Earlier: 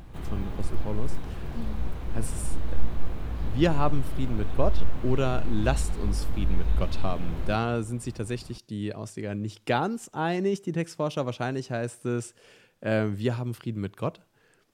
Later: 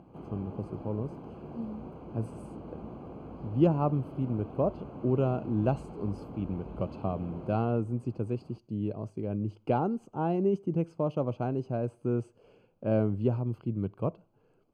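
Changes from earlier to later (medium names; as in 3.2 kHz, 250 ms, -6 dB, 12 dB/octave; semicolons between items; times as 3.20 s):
background: add high-pass 190 Hz 12 dB/octave; master: add boxcar filter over 24 samples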